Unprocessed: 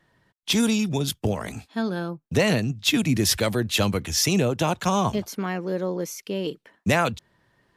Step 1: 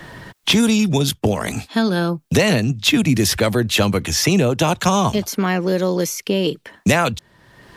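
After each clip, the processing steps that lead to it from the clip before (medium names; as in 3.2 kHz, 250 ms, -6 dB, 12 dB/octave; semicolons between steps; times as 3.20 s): three bands compressed up and down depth 70%; trim +6 dB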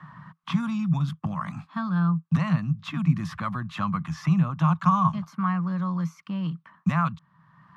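two resonant band-passes 430 Hz, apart 2.8 oct; trim +3 dB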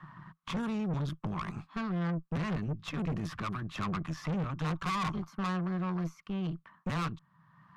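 valve stage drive 30 dB, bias 0.8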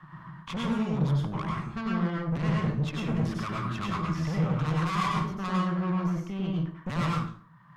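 plate-style reverb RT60 0.52 s, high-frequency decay 0.7×, pre-delay 85 ms, DRR -3 dB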